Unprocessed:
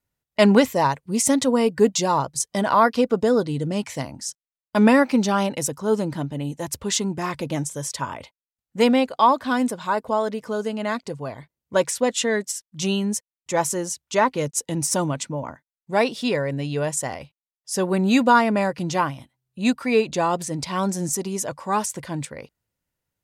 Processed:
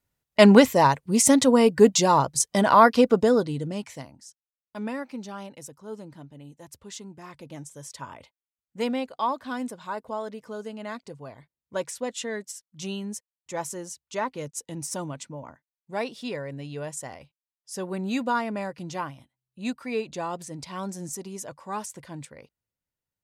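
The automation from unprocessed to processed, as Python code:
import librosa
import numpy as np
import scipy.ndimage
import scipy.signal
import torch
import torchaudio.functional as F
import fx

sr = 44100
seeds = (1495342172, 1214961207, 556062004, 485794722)

y = fx.gain(x, sr, db=fx.line((3.11, 1.5), (3.94, -9.0), (4.28, -17.0), (7.22, -17.0), (8.12, -10.0)))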